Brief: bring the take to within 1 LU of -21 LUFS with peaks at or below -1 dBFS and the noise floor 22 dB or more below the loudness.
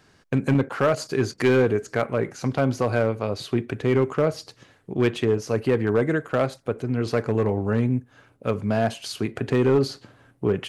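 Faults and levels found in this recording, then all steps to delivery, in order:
clipped samples 0.6%; clipping level -12.5 dBFS; loudness -24.0 LUFS; peak level -12.5 dBFS; loudness target -21.0 LUFS
-> clip repair -12.5 dBFS; trim +3 dB

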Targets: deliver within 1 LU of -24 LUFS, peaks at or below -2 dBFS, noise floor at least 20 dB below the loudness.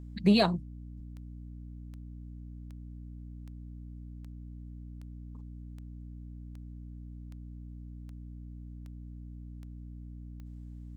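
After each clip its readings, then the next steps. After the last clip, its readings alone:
clicks found 14; hum 60 Hz; highest harmonic 300 Hz; hum level -42 dBFS; loudness -38.0 LUFS; peak level -12.0 dBFS; loudness target -24.0 LUFS
-> de-click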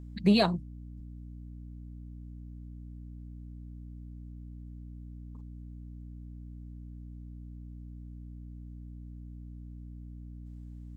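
clicks found 0; hum 60 Hz; highest harmonic 300 Hz; hum level -42 dBFS
-> de-hum 60 Hz, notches 5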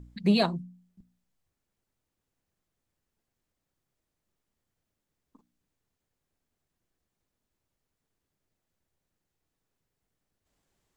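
hum not found; loudness -26.5 LUFS; peak level -11.5 dBFS; loudness target -24.0 LUFS
-> trim +2.5 dB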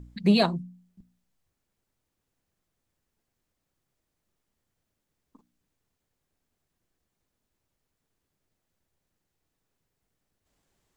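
loudness -24.0 LUFS; peak level -9.0 dBFS; noise floor -82 dBFS

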